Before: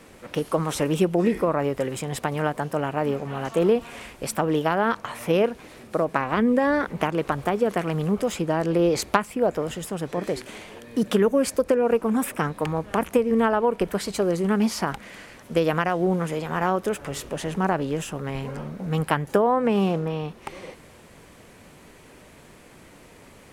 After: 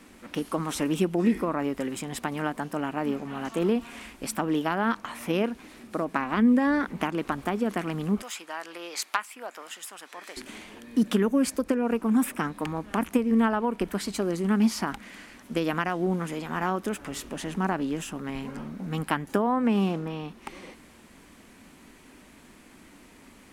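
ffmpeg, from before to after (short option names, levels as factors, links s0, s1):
-filter_complex "[0:a]asettb=1/sr,asplit=3[s0][s1][s2];[s0]atrim=end=8.224[s3];[s1]atrim=start=8.22:end=10.37,asetpts=PTS-STARTPTS,afade=t=in:d=0.004:c=qsin,afade=t=out:st=2.146:d=0.004:c=qsin,highpass=1000[s4];[s2]atrim=start=10.366[s5];[s3][s4]acrossfade=d=0.004:c1=hsin:c2=qsin[s6];[s6][s5]acrossfade=d=0.004:c1=qsin:c2=hsin,equalizer=f=125:t=o:w=1:g=-10,equalizer=f=250:t=o:w=1:g=8,equalizer=f=500:t=o:w=1:g=-8,volume=0.75"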